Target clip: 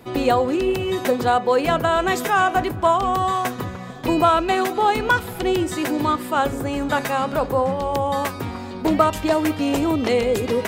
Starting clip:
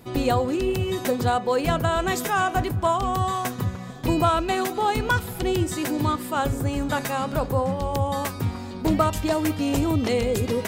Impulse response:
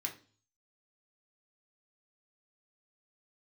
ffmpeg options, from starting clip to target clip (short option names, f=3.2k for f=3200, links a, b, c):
-filter_complex "[0:a]bass=f=250:g=-5,treble=f=4k:g=-6,acrossover=split=190[a][b];[a]asoftclip=type=tanh:threshold=-34.5dB[c];[c][b]amix=inputs=2:normalize=0,volume=5dB"